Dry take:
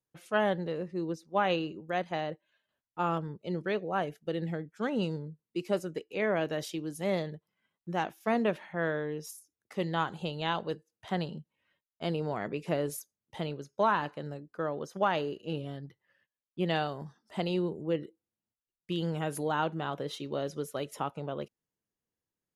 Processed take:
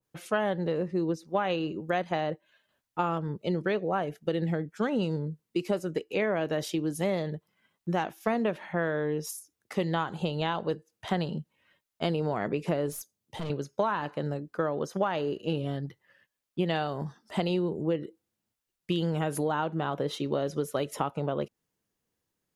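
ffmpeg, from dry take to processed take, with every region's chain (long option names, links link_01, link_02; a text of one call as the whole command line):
ffmpeg -i in.wav -filter_complex "[0:a]asettb=1/sr,asplit=3[link_01][link_02][link_03];[link_01]atrim=end=12.924[link_04];[link_02]atrim=start=12.92:end=13.5,asetpts=PTS-STARTPTS,afade=type=in:duration=0.004:curve=qsin,afade=type=out:start_time=0.576:duration=0.004:curve=qsin,highpass=frequency=63:width=0.5412,highpass=frequency=63:width=1.3066,equalizer=frequency=1500:width_type=o:width=1.6:gain=-5.5,aeval=exprs='(tanh(89.1*val(0)+0.15)-tanh(0.15))/89.1':channel_layout=same[link_05];[link_03]atrim=start=13.496[link_06];[link_04][link_05]acrossfade=duration=0.004:curve1=hsin:curve2=qsin[link_07];[link_07][link_06]acrossfade=duration=0.004:curve1=qsin:curve2=hsin,acompressor=threshold=-33dB:ratio=6,adynamicequalizer=threshold=0.00282:dfrequency=1700:dqfactor=0.7:tfrequency=1700:tqfactor=0.7:attack=5:release=100:ratio=0.375:range=2.5:mode=cutabove:tftype=highshelf,volume=8.5dB" out.wav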